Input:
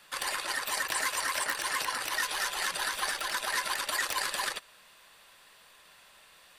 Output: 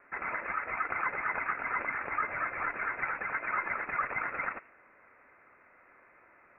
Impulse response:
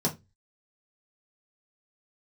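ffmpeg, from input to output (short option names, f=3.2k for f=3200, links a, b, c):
-filter_complex "[0:a]highpass=930,asplit=2[a][b];[1:a]atrim=start_sample=2205,adelay=80[c];[b][c]afir=irnorm=-1:irlink=0,volume=-26dB[d];[a][d]amix=inputs=2:normalize=0,lowpass=f=2.6k:t=q:w=0.5098,lowpass=f=2.6k:t=q:w=0.6013,lowpass=f=2.6k:t=q:w=0.9,lowpass=f=2.6k:t=q:w=2.563,afreqshift=-3100,volume=1.5dB"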